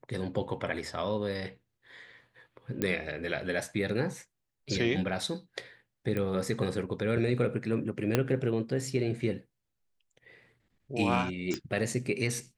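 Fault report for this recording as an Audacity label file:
2.820000	2.820000	pop -15 dBFS
6.170000	6.170000	pop -20 dBFS
8.150000	8.150000	pop -10 dBFS
11.540000	11.540000	pop -18 dBFS

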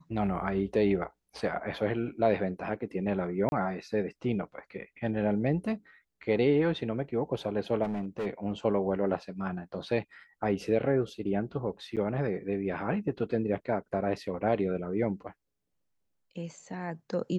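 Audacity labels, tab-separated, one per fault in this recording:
3.490000	3.520000	gap 31 ms
7.830000	8.270000	clipped -29 dBFS
11.960000	11.970000	gap 7.9 ms

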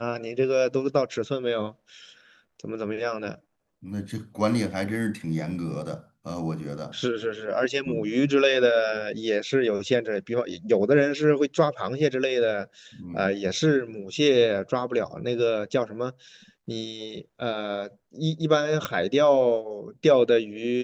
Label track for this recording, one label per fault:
18.850000	18.850000	pop -13 dBFS

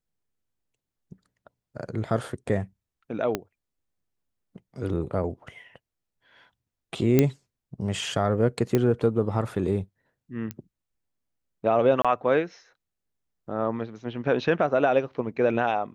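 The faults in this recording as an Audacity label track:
3.350000	3.350000	pop -11 dBFS
7.190000	7.190000	pop -6 dBFS
8.750000	8.750000	pop -10 dBFS
10.510000	10.510000	pop -18 dBFS
12.020000	12.050000	gap 26 ms

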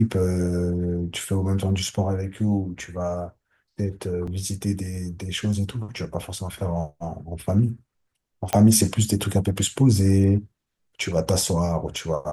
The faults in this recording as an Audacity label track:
4.270000	4.270000	gap 4.8 ms
8.530000	8.530000	pop -7 dBFS

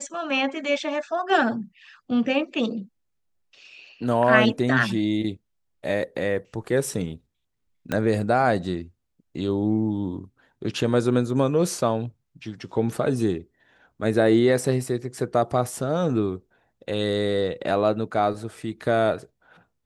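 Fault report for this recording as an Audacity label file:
7.920000	7.920000	pop -12 dBFS

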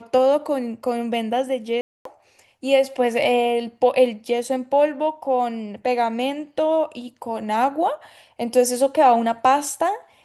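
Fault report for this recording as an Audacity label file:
1.810000	2.050000	gap 0.243 s

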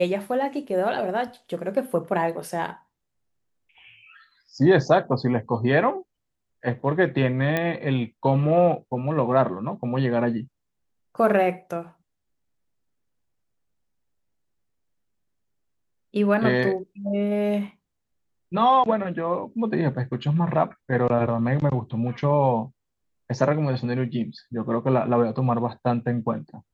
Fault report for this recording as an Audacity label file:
7.570000	7.570000	pop -11 dBFS

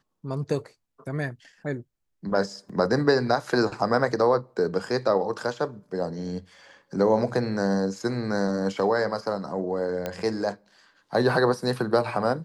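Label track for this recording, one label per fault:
2.690000	2.700000	gap 5.3 ms
10.060000	10.060000	pop -15 dBFS

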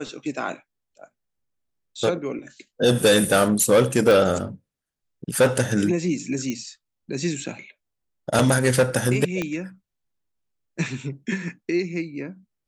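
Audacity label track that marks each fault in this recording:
4.110000	4.110000	pop
6.500000	6.500000	pop -15 dBFS
9.420000	9.420000	pop -12 dBFS

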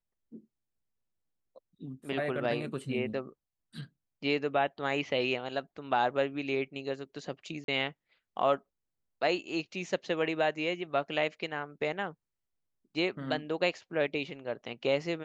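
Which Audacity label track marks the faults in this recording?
7.640000	7.680000	gap 42 ms

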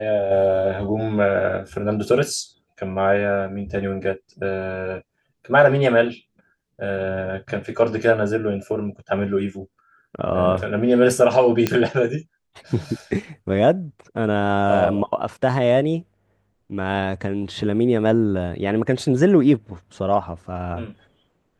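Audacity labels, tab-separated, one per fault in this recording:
11.670000	11.670000	pop -5 dBFS

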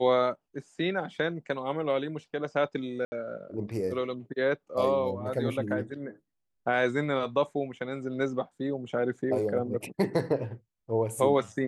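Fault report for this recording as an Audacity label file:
3.050000	3.120000	gap 70 ms

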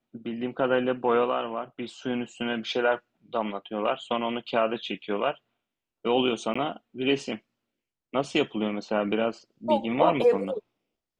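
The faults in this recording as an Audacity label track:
6.540000	6.550000	gap 15 ms

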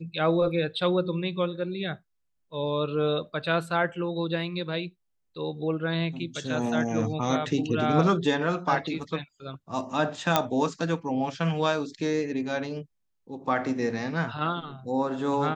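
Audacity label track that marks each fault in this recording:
10.360000	10.360000	pop -6 dBFS

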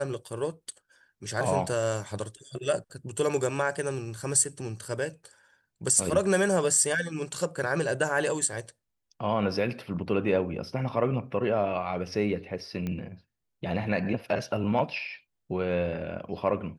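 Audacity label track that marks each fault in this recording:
12.870000	12.870000	pop -21 dBFS

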